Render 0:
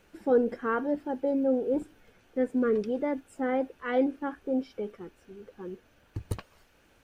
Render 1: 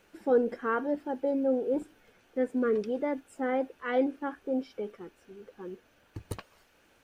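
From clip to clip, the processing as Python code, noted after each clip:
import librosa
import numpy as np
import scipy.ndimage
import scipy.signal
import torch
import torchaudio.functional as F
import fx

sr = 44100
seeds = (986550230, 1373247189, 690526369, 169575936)

y = fx.low_shelf(x, sr, hz=160.0, db=-8.5)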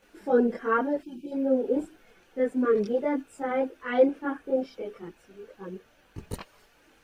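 y = fx.spec_box(x, sr, start_s=1.01, length_s=0.31, low_hz=380.0, high_hz=2300.0, gain_db=-25)
y = fx.chorus_voices(y, sr, voices=4, hz=0.3, base_ms=23, depth_ms=3.7, mix_pct=65)
y = F.gain(torch.from_numpy(y), 6.0).numpy()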